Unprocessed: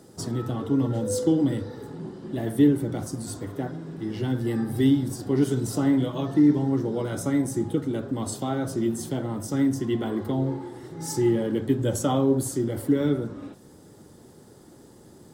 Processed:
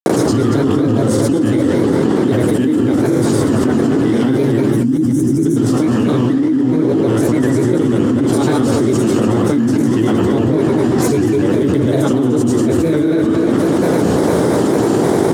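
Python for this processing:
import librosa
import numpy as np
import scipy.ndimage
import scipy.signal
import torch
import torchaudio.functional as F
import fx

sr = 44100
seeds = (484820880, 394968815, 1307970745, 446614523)

p1 = fx.bin_compress(x, sr, power=0.6)
p2 = fx.dynamic_eq(p1, sr, hz=710.0, q=1.4, threshold_db=-38.0, ratio=4.0, max_db=-7)
p3 = fx.spec_box(p2, sr, start_s=4.62, length_s=0.9, low_hz=360.0, high_hz=5100.0, gain_db=-19)
p4 = fx.high_shelf(p3, sr, hz=3300.0, db=-11.0)
p5 = p4 + fx.echo_multitap(p4, sr, ms=(51, 162, 493, 815), db=(-5.0, -12.5, -12.5, -17.0), dry=0)
p6 = fx.granulator(p5, sr, seeds[0], grain_ms=100.0, per_s=20.0, spray_ms=100.0, spread_st=3)
p7 = fx.highpass(p6, sr, hz=160.0, slope=6)
p8 = fx.hum_notches(p7, sr, base_hz=50, count=7)
p9 = p8 + 10.0 ** (-8.5 / 20.0) * np.pad(p8, (int(228 * sr / 1000.0), 0))[:len(p8)]
p10 = fx.env_flatten(p9, sr, amount_pct=100)
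y = p10 * librosa.db_to_amplitude(-1.0)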